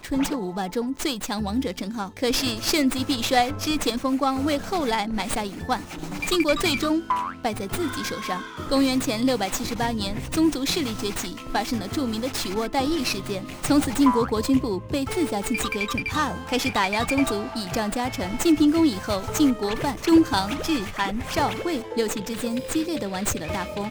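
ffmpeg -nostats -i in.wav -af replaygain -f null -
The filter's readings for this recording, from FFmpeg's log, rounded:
track_gain = +3.7 dB
track_peak = 0.314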